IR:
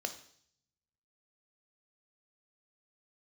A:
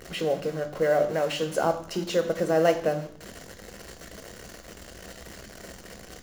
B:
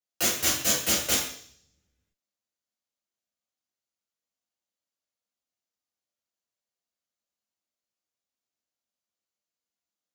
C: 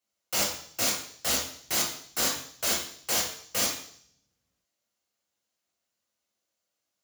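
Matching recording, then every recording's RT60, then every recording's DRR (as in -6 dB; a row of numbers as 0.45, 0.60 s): A; 0.60, 0.60, 0.60 s; 6.5, -7.0, -2.0 dB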